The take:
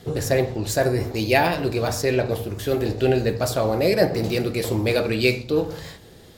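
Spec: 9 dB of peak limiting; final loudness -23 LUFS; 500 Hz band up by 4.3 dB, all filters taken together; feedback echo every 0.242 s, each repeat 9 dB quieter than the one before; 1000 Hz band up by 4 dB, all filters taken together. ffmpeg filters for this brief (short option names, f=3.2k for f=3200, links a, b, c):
-af "equalizer=f=500:t=o:g=4.5,equalizer=f=1k:t=o:g=3.5,alimiter=limit=-9.5dB:level=0:latency=1,aecho=1:1:242|484|726|968:0.355|0.124|0.0435|0.0152,volume=-2.5dB"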